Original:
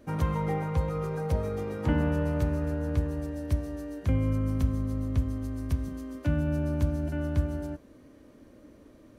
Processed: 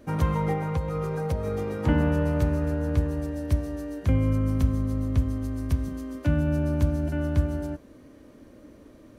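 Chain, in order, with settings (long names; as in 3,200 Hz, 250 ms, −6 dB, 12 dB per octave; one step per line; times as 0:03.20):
0:00.52–0:01.47: downward compressor 4 to 1, threshold −27 dBFS, peak gain reduction 6 dB
level +3.5 dB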